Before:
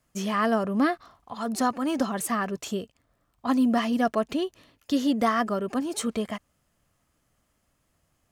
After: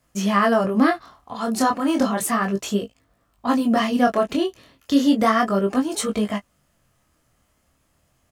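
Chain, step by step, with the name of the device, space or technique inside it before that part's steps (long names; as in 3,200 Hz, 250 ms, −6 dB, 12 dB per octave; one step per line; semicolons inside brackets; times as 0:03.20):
double-tracked vocal (double-tracking delay 15 ms −11 dB; chorus effect 0.33 Hz, delay 19 ms, depth 7.5 ms)
level +8.5 dB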